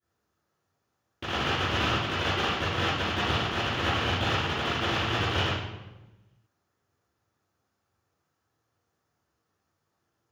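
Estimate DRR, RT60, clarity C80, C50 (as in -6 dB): -15.5 dB, 1.1 s, 3.5 dB, -1.5 dB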